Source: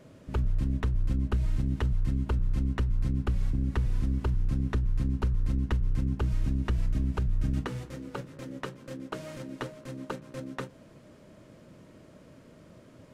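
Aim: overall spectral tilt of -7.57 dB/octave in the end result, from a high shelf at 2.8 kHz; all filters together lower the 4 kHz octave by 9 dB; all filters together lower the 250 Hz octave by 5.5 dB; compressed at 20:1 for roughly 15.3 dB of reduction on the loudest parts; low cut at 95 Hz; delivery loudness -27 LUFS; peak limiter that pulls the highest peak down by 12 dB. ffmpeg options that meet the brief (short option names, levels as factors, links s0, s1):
-af "highpass=95,equalizer=f=250:t=o:g=-7,highshelf=f=2800:g=-8.5,equalizer=f=4000:t=o:g=-6,acompressor=threshold=0.00631:ratio=20,volume=16.8,alimiter=limit=0.15:level=0:latency=1"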